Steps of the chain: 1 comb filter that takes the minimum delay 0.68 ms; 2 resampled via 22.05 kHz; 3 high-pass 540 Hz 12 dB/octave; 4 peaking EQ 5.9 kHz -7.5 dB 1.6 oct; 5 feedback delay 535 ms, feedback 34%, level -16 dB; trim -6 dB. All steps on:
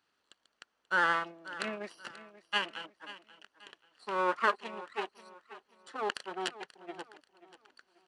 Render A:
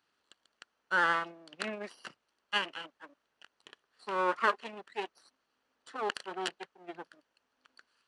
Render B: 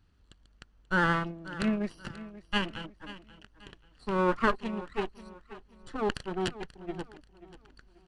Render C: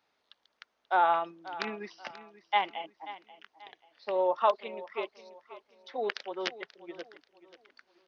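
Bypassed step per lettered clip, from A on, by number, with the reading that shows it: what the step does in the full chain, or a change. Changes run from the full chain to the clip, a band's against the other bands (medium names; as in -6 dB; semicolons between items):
5, momentary loudness spread change -2 LU; 3, 250 Hz band +13.0 dB; 1, 2 kHz band -7.5 dB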